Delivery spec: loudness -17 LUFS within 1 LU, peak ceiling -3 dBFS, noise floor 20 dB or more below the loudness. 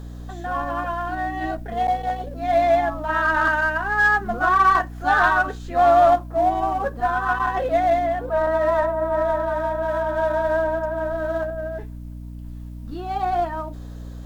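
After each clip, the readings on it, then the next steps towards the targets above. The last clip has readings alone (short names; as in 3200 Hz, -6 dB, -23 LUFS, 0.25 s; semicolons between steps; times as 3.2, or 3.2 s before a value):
hum 60 Hz; harmonics up to 300 Hz; hum level -32 dBFS; loudness -21.0 LUFS; peak -5.0 dBFS; loudness target -17.0 LUFS
-> de-hum 60 Hz, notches 5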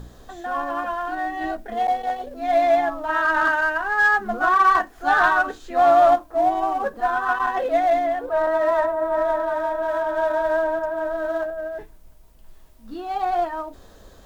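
hum none; loudness -21.0 LUFS; peak -5.5 dBFS; loudness target -17.0 LUFS
-> gain +4 dB; limiter -3 dBFS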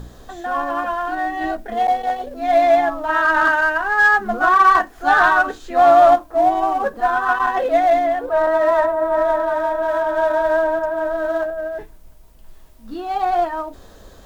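loudness -17.0 LUFS; peak -3.0 dBFS; noise floor -44 dBFS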